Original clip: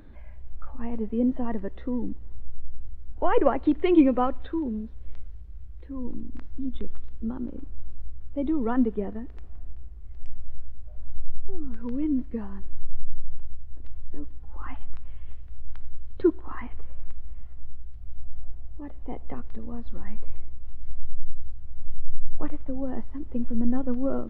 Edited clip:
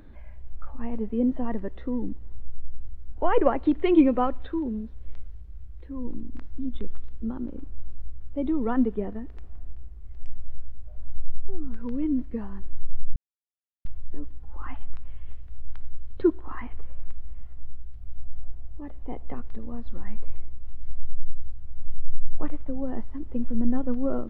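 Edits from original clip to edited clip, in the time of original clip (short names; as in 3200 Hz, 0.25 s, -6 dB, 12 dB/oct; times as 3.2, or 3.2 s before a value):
13.16–13.85 mute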